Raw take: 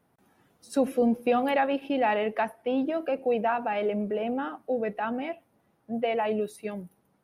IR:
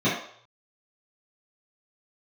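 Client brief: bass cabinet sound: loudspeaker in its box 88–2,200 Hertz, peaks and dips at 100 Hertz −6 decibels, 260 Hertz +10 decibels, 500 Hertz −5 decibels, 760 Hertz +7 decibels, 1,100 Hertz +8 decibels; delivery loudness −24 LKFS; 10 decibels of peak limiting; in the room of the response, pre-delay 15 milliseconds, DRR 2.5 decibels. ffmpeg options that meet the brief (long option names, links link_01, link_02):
-filter_complex "[0:a]alimiter=limit=-23.5dB:level=0:latency=1,asplit=2[link_01][link_02];[1:a]atrim=start_sample=2205,adelay=15[link_03];[link_02][link_03]afir=irnorm=-1:irlink=0,volume=-18dB[link_04];[link_01][link_04]amix=inputs=2:normalize=0,highpass=frequency=88:width=0.5412,highpass=frequency=88:width=1.3066,equalizer=frequency=100:width_type=q:width=4:gain=-6,equalizer=frequency=260:width_type=q:width=4:gain=10,equalizer=frequency=500:width_type=q:width=4:gain=-5,equalizer=frequency=760:width_type=q:width=4:gain=7,equalizer=frequency=1100:width_type=q:width=4:gain=8,lowpass=frequency=2200:width=0.5412,lowpass=frequency=2200:width=1.3066,volume=-1.5dB"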